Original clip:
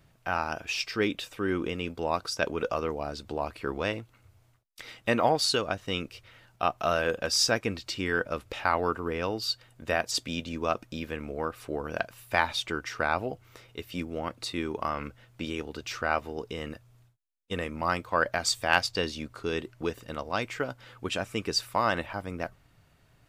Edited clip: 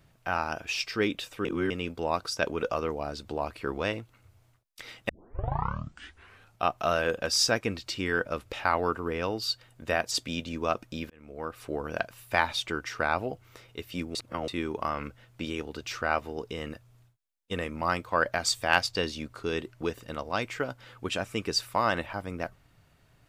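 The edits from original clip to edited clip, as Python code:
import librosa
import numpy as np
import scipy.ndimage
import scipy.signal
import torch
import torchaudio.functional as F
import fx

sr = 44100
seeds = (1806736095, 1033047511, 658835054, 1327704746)

y = fx.edit(x, sr, fx.reverse_span(start_s=1.45, length_s=0.25),
    fx.tape_start(start_s=5.09, length_s=1.53),
    fx.fade_in_span(start_s=11.1, length_s=0.56),
    fx.reverse_span(start_s=14.15, length_s=0.33), tone=tone)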